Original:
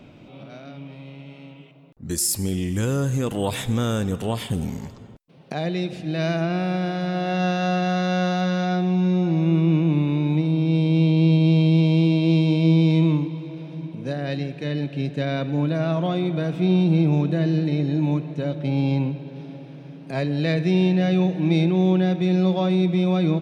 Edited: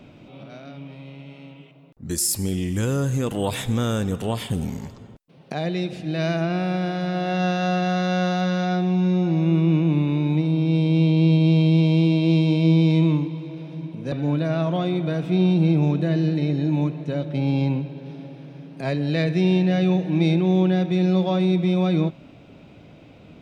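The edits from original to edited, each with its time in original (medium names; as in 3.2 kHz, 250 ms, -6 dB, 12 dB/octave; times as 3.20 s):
14.12–15.42 s: delete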